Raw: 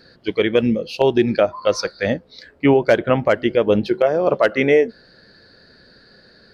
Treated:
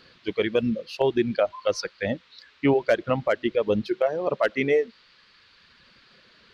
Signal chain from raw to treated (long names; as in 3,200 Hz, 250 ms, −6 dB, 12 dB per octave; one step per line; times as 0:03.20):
reverb reduction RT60 1.6 s
noise in a band 1,000–4,300 Hz −53 dBFS
level −6 dB